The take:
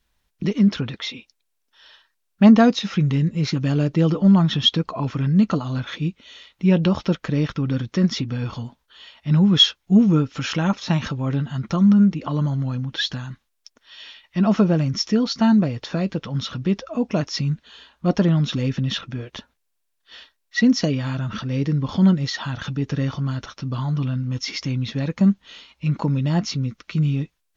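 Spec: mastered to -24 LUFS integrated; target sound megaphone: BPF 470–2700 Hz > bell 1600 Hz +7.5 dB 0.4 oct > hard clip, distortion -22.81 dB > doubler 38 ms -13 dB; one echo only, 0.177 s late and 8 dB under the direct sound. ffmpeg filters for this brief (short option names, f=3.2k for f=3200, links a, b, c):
-filter_complex "[0:a]highpass=470,lowpass=2.7k,equalizer=f=1.6k:t=o:w=0.4:g=7.5,aecho=1:1:177:0.398,asoftclip=type=hard:threshold=-10.5dB,asplit=2[a][b];[b]adelay=38,volume=-13dB[c];[a][c]amix=inputs=2:normalize=0,volume=5dB"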